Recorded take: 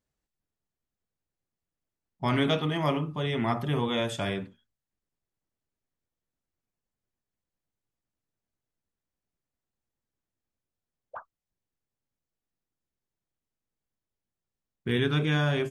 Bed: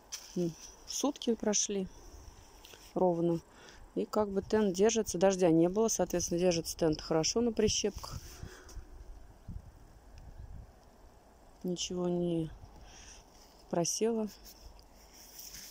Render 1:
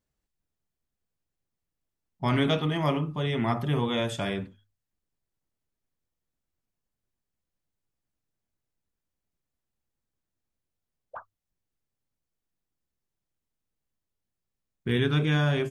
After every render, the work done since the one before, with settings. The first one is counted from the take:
low-shelf EQ 120 Hz +5.5 dB
mains-hum notches 50/100 Hz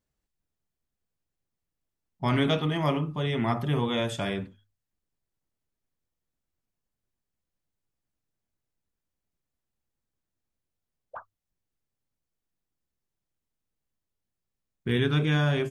no processing that can be heard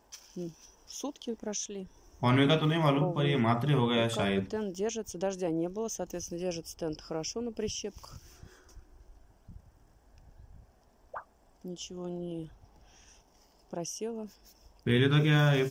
mix in bed −5.5 dB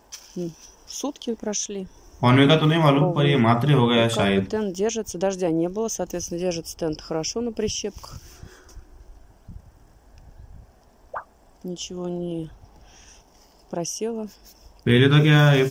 level +9 dB

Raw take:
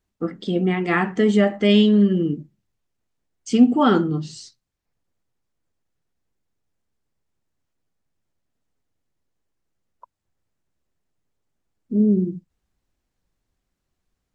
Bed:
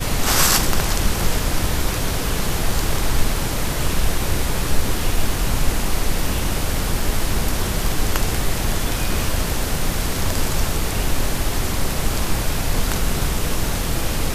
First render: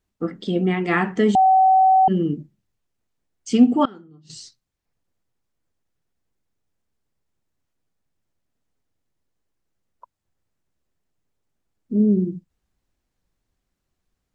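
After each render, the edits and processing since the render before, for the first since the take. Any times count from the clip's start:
0:01.35–0:02.08: beep over 759 Hz −11 dBFS
0:03.85–0:04.30: gate with flip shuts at −18 dBFS, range −25 dB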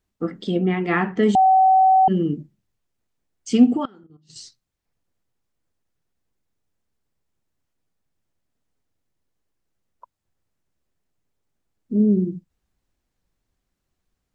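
0:00.57–0:01.23: high-frequency loss of the air 140 metres
0:03.77–0:04.36: output level in coarse steps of 12 dB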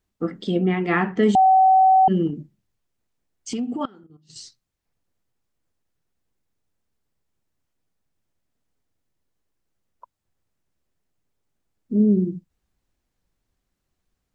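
0:02.27–0:03.81: downward compressor, threshold −24 dBFS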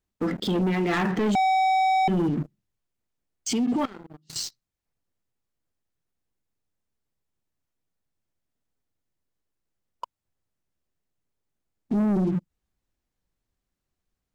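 leveller curve on the samples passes 3
brickwall limiter −19.5 dBFS, peak gain reduction 11.5 dB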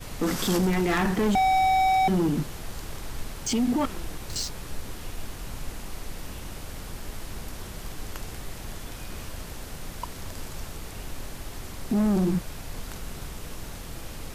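mix in bed −16.5 dB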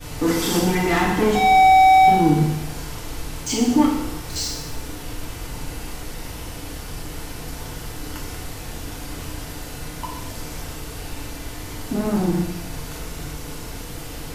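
feedback delay network reverb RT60 0.93 s, low-frequency decay 0.9×, high-frequency decay 1×, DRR −4.5 dB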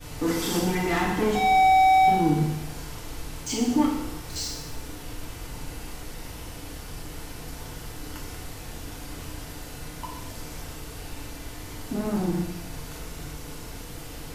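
level −5.5 dB

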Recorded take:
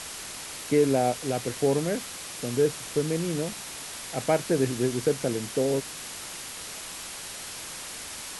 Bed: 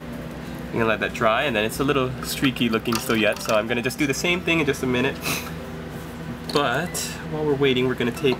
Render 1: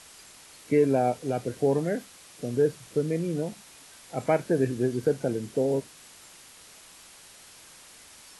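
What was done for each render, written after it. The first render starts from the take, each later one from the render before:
noise reduction from a noise print 12 dB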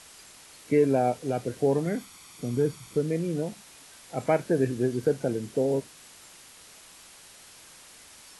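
0:01.86–0:02.97: comb filter 0.9 ms, depth 51%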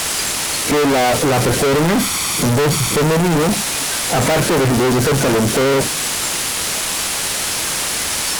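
fuzz pedal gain 48 dB, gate −56 dBFS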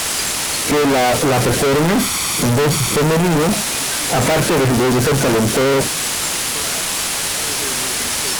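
mix in bed −12.5 dB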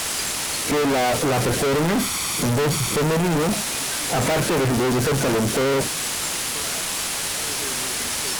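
level −5.5 dB

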